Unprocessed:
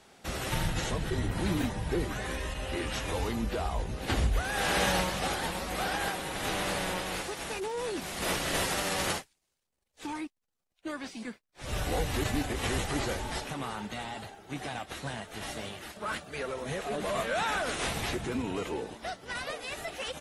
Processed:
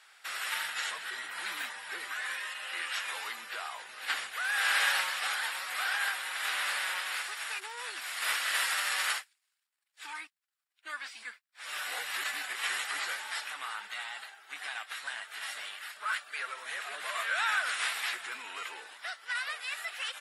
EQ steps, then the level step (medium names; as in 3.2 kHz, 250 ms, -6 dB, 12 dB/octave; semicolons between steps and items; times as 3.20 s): resonant high-pass 1.5 kHz, resonance Q 1.7; band-stop 6.2 kHz, Q 7.1; 0.0 dB